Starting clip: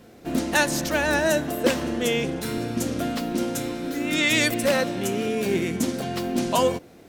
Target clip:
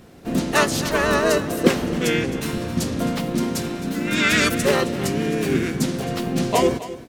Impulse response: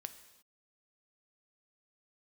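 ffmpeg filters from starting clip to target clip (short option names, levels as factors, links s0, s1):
-filter_complex "[0:a]asplit=3[s0][s1][s2];[s1]asetrate=29433,aresample=44100,atempo=1.49831,volume=0.631[s3];[s2]asetrate=33038,aresample=44100,atempo=1.33484,volume=0.708[s4];[s0][s3][s4]amix=inputs=3:normalize=0,aecho=1:1:265:0.178"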